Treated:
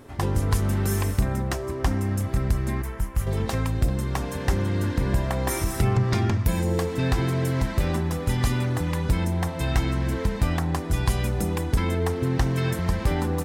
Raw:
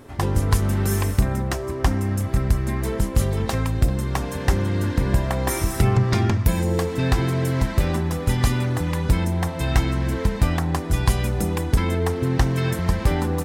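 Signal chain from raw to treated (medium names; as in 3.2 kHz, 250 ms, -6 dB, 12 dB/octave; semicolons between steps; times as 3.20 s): 2.82–3.27 s: graphic EQ 125/250/500/4000/8000 Hz -5/-10/-11/-11/-5 dB; in parallel at -2.5 dB: peak limiter -13 dBFS, peak gain reduction 6.5 dB; on the sum: trim -7 dB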